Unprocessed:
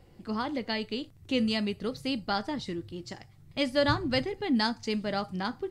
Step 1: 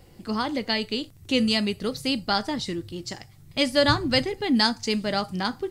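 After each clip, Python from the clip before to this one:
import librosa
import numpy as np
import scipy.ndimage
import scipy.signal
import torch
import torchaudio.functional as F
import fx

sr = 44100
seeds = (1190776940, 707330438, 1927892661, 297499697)

y = fx.high_shelf(x, sr, hz=4400.0, db=9.5)
y = F.gain(torch.from_numpy(y), 4.5).numpy()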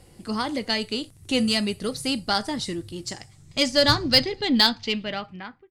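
y = fx.fade_out_tail(x, sr, length_s=1.06)
y = fx.filter_sweep_lowpass(y, sr, from_hz=10000.0, to_hz=2200.0, start_s=2.99, end_s=5.53, q=2.8)
y = fx.cheby_harmonics(y, sr, harmonics=(6,), levels_db=(-26,), full_scale_db=-4.0)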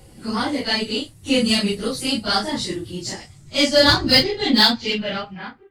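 y = fx.phase_scramble(x, sr, seeds[0], window_ms=100)
y = F.gain(torch.from_numpy(y), 4.5).numpy()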